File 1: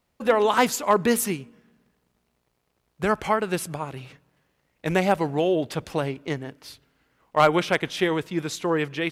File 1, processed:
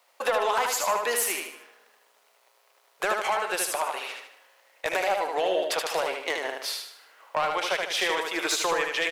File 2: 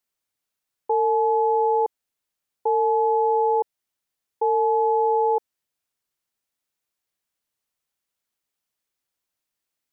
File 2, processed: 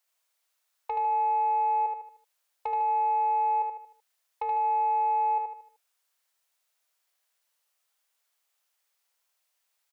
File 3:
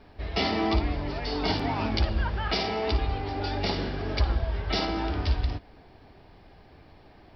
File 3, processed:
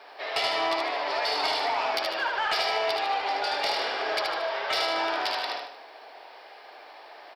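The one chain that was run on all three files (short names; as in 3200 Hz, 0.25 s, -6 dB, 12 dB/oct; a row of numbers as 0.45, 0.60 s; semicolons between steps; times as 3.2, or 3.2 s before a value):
HPF 550 Hz 24 dB/oct; compressor 5:1, threshold -34 dBFS; soft clip -29 dBFS; on a send: feedback echo 76 ms, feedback 42%, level -4 dB; on the sum: match loudness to -27 LUFS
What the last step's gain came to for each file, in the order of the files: +11.0, +5.0, +10.0 dB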